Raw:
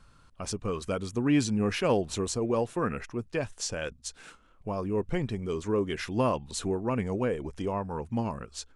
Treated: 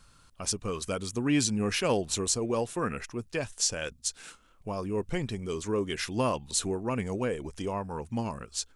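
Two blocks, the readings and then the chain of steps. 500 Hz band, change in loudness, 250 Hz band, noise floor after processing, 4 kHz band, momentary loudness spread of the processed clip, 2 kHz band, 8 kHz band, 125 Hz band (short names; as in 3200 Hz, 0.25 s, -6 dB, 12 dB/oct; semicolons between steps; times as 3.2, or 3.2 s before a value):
-2.0 dB, -0.5 dB, -2.0 dB, -60 dBFS, +5.0 dB, 8 LU, +1.0 dB, +7.5 dB, -2.0 dB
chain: high shelf 3400 Hz +11.5 dB; gain -2 dB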